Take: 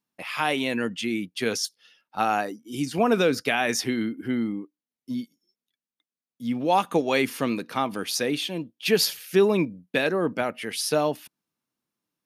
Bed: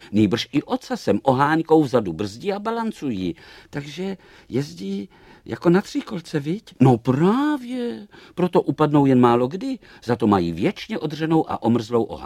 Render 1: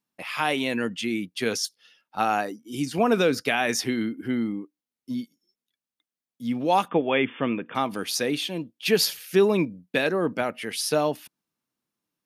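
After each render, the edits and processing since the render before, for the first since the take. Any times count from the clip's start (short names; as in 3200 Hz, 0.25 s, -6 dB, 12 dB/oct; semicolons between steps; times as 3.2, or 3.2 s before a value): 6.88–7.75 brick-wall FIR low-pass 3600 Hz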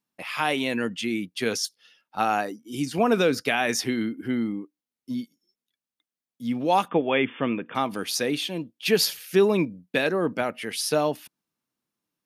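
nothing audible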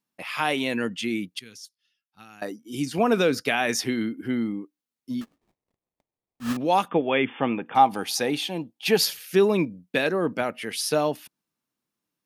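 1.39–2.42 passive tone stack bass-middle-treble 6-0-2; 5.21–6.57 sample-rate reducer 1500 Hz, jitter 20%; 7.27–8.98 bell 810 Hz +15 dB 0.26 oct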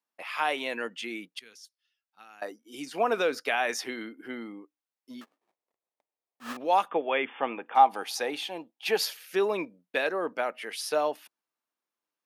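HPF 550 Hz 12 dB/oct; high shelf 2500 Hz -8.5 dB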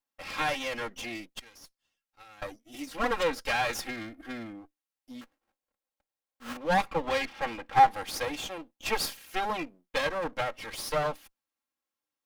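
minimum comb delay 3.7 ms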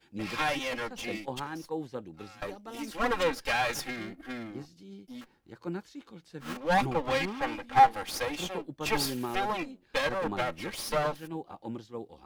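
add bed -20 dB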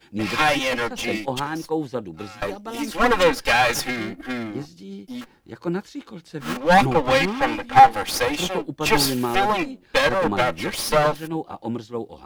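gain +10.5 dB; limiter -2 dBFS, peak gain reduction 2.5 dB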